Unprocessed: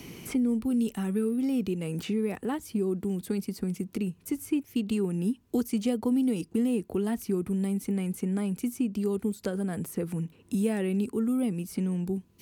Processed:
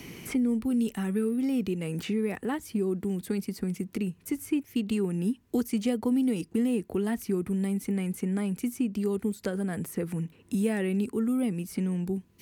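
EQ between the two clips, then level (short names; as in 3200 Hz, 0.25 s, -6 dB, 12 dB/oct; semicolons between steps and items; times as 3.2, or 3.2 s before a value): bell 1900 Hz +5 dB 0.62 oct; 0.0 dB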